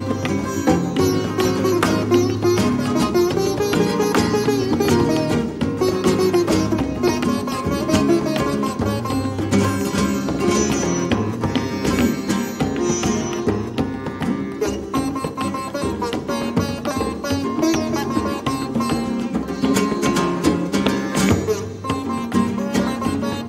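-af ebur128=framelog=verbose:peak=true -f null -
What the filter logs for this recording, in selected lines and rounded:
Integrated loudness:
  I:         -20.0 LUFS
  Threshold: -30.0 LUFS
Loudness range:
  LRA:         4.4 LU
  Threshold: -40.0 LUFS
  LRA low:   -22.6 LUFS
  LRA high:  -18.2 LUFS
True peak:
  Peak:       -3.2 dBFS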